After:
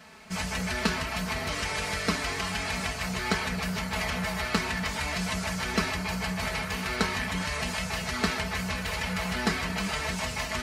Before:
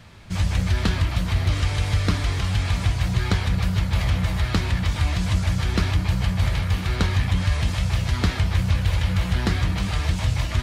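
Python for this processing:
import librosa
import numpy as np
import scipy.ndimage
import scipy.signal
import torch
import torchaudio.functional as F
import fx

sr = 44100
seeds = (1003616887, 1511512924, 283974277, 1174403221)

y = fx.highpass(x, sr, hz=430.0, slope=6)
y = fx.peak_eq(y, sr, hz=3500.0, db=-7.0, octaves=0.44)
y = y + 0.82 * np.pad(y, (int(4.6 * sr / 1000.0), 0))[:len(y)]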